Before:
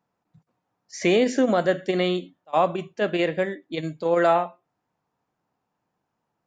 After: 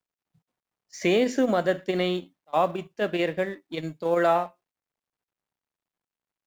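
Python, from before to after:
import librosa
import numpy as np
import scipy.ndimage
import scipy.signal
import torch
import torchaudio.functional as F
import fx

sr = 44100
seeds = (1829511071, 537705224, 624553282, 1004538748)

y = fx.law_mismatch(x, sr, coded='A')
y = y * 10.0 ** (-2.0 / 20.0)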